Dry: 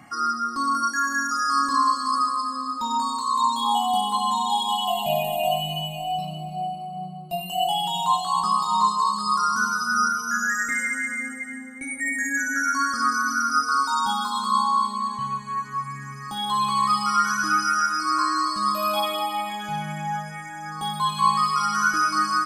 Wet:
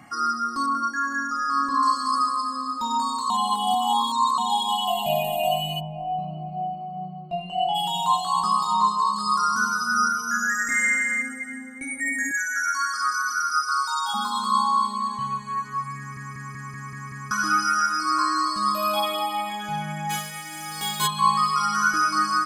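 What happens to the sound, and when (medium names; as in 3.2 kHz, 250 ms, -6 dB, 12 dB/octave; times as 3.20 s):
0.66–1.83 s: low-pass 1.9 kHz 6 dB/octave
3.30–4.38 s: reverse
5.79–7.74 s: low-pass 1 kHz -> 2.7 kHz
8.73–9.16 s: treble shelf 5 kHz -6.5 dB
10.62–11.22 s: flutter echo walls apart 8.3 m, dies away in 0.76 s
12.31–14.14 s: high-pass 1.1 kHz
15.98 s: stutter in place 0.19 s, 7 plays
20.09–21.06 s: formants flattened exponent 0.3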